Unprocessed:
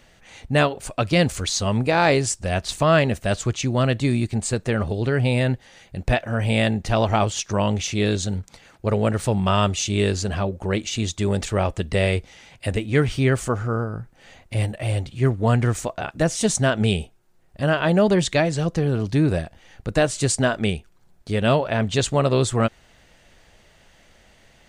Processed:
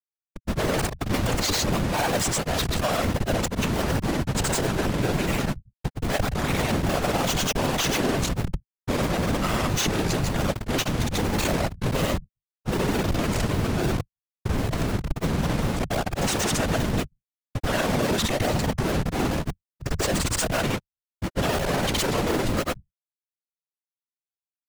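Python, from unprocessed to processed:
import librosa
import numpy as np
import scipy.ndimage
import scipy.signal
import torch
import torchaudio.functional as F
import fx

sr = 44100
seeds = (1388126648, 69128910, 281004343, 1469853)

y = fx.schmitt(x, sr, flips_db=-29.0)
y = fx.granulator(y, sr, seeds[0], grain_ms=100.0, per_s=20.0, spray_ms=100.0, spread_st=0)
y = fx.whisperise(y, sr, seeds[1])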